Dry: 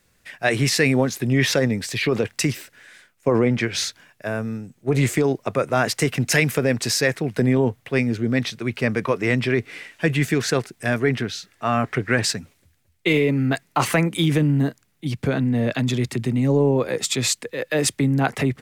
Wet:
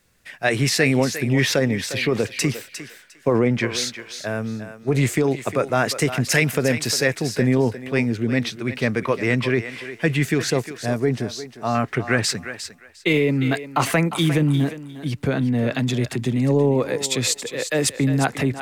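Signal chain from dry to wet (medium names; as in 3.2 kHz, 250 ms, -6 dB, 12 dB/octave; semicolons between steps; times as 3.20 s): 10.50–11.75 s: high-order bell 2.1 kHz -9 dB; thinning echo 354 ms, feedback 19%, high-pass 450 Hz, level -10 dB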